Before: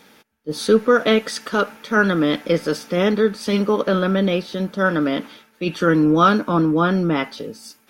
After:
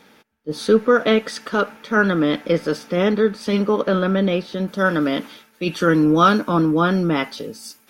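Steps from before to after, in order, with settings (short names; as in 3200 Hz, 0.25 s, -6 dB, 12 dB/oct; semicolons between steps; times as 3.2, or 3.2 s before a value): high shelf 4600 Hz -6 dB, from 4.68 s +5 dB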